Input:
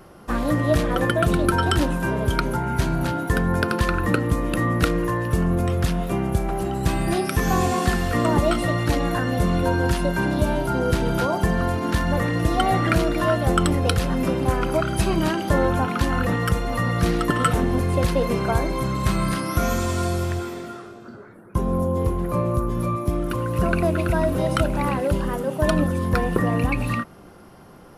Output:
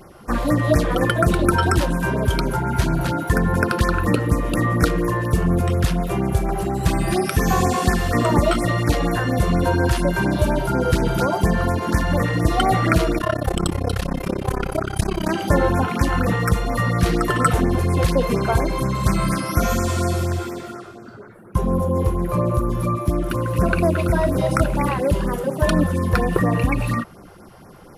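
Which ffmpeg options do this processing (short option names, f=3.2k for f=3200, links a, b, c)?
-filter_complex "[0:a]asettb=1/sr,asplit=3[a][b][c];[a]atrim=end=13.184[d];[b]atrim=start=13.18:end=15.29,asetpts=PTS-STARTPTS,afade=t=in:d=0.004:c=qsin,afade=t=out:st=2.106:d=0.004:c=qsin,tremolo=f=33:d=0.974[e];[c]atrim=start=15.286[f];[d][e]acrossfade=d=0.004:c1=hsin:c2=qsin[g];[g][f]acrossfade=d=0.004:c1=qsin:c2=hsin,afftfilt=real='re*(1-between(b*sr/1024,210*pow(3700/210,0.5+0.5*sin(2*PI*4.2*pts/sr))/1.41,210*pow(3700/210,0.5+0.5*sin(2*PI*4.2*pts/sr))*1.41))':imag='im*(1-between(b*sr/1024,210*pow(3700/210,0.5+0.5*sin(2*PI*4.2*pts/sr))/1.41,210*pow(3700/210,0.5+0.5*sin(2*PI*4.2*pts/sr))*1.41))':win_size=1024:overlap=0.75,volume=3dB"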